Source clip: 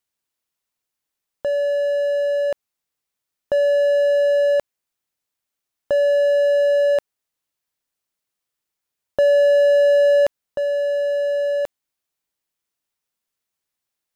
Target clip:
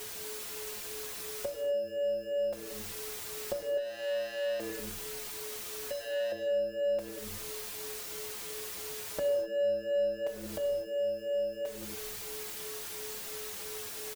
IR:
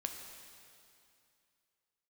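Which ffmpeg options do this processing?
-filter_complex "[0:a]aeval=exprs='val(0)+0.5*0.0282*sgn(val(0))':c=same,asplit=6[a][b][c][d][e][f];[b]adelay=96,afreqshift=-120,volume=-15dB[g];[c]adelay=192,afreqshift=-240,volume=-20.8dB[h];[d]adelay=288,afreqshift=-360,volume=-26.7dB[i];[e]adelay=384,afreqshift=-480,volume=-32.5dB[j];[f]adelay=480,afreqshift=-600,volume=-38.4dB[k];[a][g][h][i][j][k]amix=inputs=6:normalize=0,aeval=exprs='val(0)+0.01*sin(2*PI*430*n/s)':c=same,asettb=1/sr,asplit=3[l][m][n];[l]atrim=end=3.774[o];[m]atrim=start=3.77:end=6.32,asetpts=PTS-STARTPTS,afade=t=in:d=0.004:c=qsin,afade=t=out:st=2.546:d=0.004:c=qsin,asoftclip=type=hard:threshold=-25.5dB[p];[n]atrim=start=6.316[q];[o][p]acrossfade=d=0.004:c1=hsin:c2=qsin[r];[r][q]acrossfade=d=0.004:c1=qsin:c2=hsin,acompressor=threshold=-32dB:ratio=2.5[s];[1:a]atrim=start_sample=2205,afade=t=out:st=0.32:d=0.01,atrim=end_sample=14553[t];[s][t]afir=irnorm=-1:irlink=0,asplit=2[u][v];[v]adelay=4.9,afreqshift=-2.9[w];[u][w]amix=inputs=2:normalize=1"

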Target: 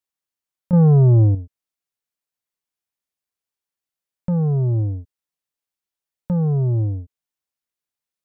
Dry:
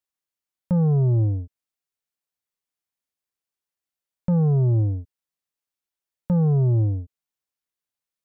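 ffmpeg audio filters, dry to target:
-filter_complex "[0:a]asettb=1/sr,asplit=3[a][b][c];[a]atrim=end=0.734[d];[b]atrim=start=0.73:end=1.35,asetpts=PTS-STARTPTS,afade=t=in:d=0.004:c=qsin,afade=t=out:st=0.616:d=0.004:c=qsin,acontrast=86[e];[c]atrim=start=1.346[f];[d][e]acrossfade=d=0.004:c1=hsin:c2=qsin[g];[g][f]acrossfade=d=0.004:c1=qsin:c2=hsin"

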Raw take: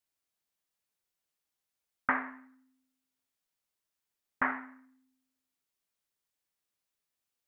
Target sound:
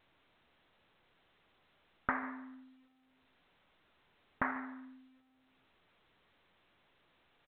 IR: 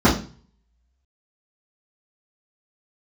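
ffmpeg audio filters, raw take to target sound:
-af "aecho=1:1:142:0.133,acompressor=threshold=-49dB:ratio=2,lowpass=f=1.6k:p=1,volume=9.5dB" -ar 8000 -c:a pcm_alaw

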